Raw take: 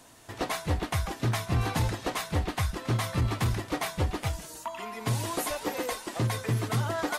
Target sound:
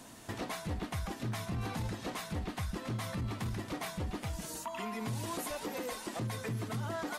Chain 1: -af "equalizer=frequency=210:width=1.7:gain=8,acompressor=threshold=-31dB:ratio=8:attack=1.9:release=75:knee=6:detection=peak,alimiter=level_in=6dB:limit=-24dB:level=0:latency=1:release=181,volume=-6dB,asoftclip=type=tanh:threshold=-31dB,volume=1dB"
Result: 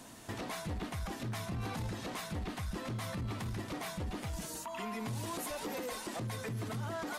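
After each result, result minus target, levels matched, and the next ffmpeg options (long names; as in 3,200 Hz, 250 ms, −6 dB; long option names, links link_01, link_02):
downward compressor: peak gain reduction +13 dB; soft clipping: distortion +18 dB
-af "equalizer=frequency=210:width=1.7:gain=8,alimiter=level_in=6dB:limit=-24dB:level=0:latency=1:release=181,volume=-6dB,asoftclip=type=tanh:threshold=-31dB,volume=1dB"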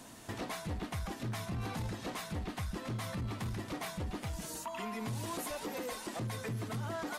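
soft clipping: distortion +19 dB
-af "equalizer=frequency=210:width=1.7:gain=8,alimiter=level_in=6dB:limit=-24dB:level=0:latency=1:release=181,volume=-6dB,asoftclip=type=tanh:threshold=-20.5dB,volume=1dB"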